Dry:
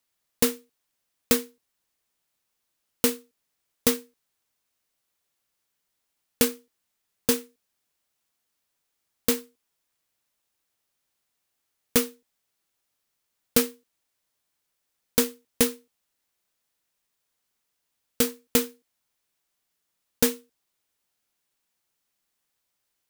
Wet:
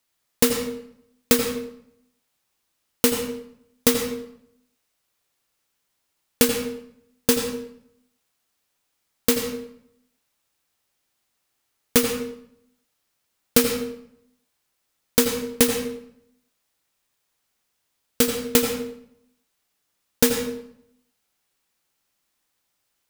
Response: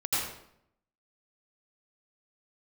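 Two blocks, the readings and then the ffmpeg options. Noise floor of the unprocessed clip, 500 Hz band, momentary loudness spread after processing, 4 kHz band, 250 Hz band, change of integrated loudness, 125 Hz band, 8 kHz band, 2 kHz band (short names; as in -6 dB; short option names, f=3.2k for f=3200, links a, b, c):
-79 dBFS, +5.5 dB, 15 LU, +5.0 dB, +5.0 dB, +3.0 dB, +5.5 dB, +4.0 dB, +5.0 dB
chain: -filter_complex "[0:a]asplit=2[a][b];[1:a]atrim=start_sample=2205,highshelf=f=11k:g=-9.5[c];[b][c]afir=irnorm=-1:irlink=0,volume=-10.5dB[d];[a][d]amix=inputs=2:normalize=0,volume=2dB"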